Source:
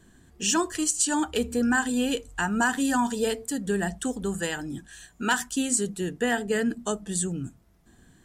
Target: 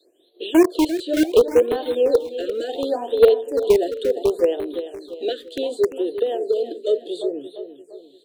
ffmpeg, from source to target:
-filter_complex "[0:a]firequalizer=gain_entry='entry(110,0);entry(190,-22);entry(330,6);entry(570,10);entry(870,-15);entry(1500,-27);entry(3900,11);entry(5500,-24);entry(12000,-11)':delay=0.05:min_phase=1,asettb=1/sr,asplit=3[s0][s1][s2];[s0]atrim=end=5.924[s3];[s1]atrim=start=5.92:end=6.81,asetpts=PTS-STARTPTS,afade=t=in:d=0.004:c=qsin,afade=t=out:st=0.886:d=0.004:c=qsin,acrossover=split=190[s4][s5];[s5]acompressor=threshold=0.0562:ratio=6[s6];[s4][s6]amix=inputs=2:normalize=0[s7];[s2]atrim=start=6.806[s8];[s3][s7]acrossfade=d=0.004:c1=hsin:c2=qsin[s9];[s9][s8]acrossfade=d=0.004:c1=qsin:c2=hsin,acrossover=split=290|2500[s10][s11][s12];[s10]acrusher=bits=4:mix=0:aa=0.000001[s13];[s11]agate=range=0.0224:threshold=0.00158:ratio=3:detection=peak[s14];[s12]acompressor=threshold=0.00282:ratio=6[s15];[s13][s14][s15]amix=inputs=3:normalize=0,aecho=1:1:345|690|1035|1380|1725:0.282|0.13|0.0596|0.0274|0.0126,afftfilt=real='re*(1-between(b*sr/1024,860*pow(6500/860,0.5+0.5*sin(2*PI*0.69*pts/sr))/1.41,860*pow(6500/860,0.5+0.5*sin(2*PI*0.69*pts/sr))*1.41))':imag='im*(1-between(b*sr/1024,860*pow(6500/860,0.5+0.5*sin(2*PI*0.69*pts/sr))/1.41,860*pow(6500/860,0.5+0.5*sin(2*PI*0.69*pts/sr))*1.41))':win_size=1024:overlap=0.75,volume=2.37"

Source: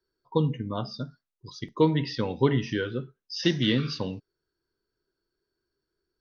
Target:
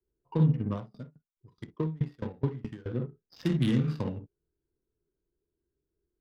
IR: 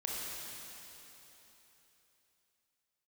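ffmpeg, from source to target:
-filter_complex "[0:a]equalizer=f=65:w=1.5:g=5,acrossover=split=250[s0][s1];[s1]acompressor=threshold=0.02:ratio=10[s2];[s0][s2]amix=inputs=2:normalize=0,equalizer=f=5800:w=0.32:g=4[s3];[1:a]atrim=start_sample=2205,atrim=end_sample=3087[s4];[s3][s4]afir=irnorm=-1:irlink=0,adynamicsmooth=sensitivity=4.5:basefreq=520,asettb=1/sr,asplit=3[s5][s6][s7];[s5]atrim=end=0.734[s8];[s6]atrim=start=0.73:end=2.86,asetpts=PTS-STARTPTS,afade=t=in:d=0.004:c=qsin,afade=t=out:st=2.126:d=0.004:c=qsin,aeval=exprs='val(0)*pow(10,-26*if(lt(mod(4.7*n/s,1),2*abs(4.7)/1000),1-mod(4.7*n/s,1)/(2*abs(4.7)/1000),(mod(4.7*n/s,1)-2*abs(4.7)/1000)/(1-2*abs(4.7)/1000))/20)':c=same[s9];[s7]atrim=start=2.856[s10];[s8][s9]acrossfade=d=0.004:c1=hsin:c2=qsin[s11];[s11][s10]acrossfade=d=0.004:c1=qsin:c2=hsin,volume=1.41"

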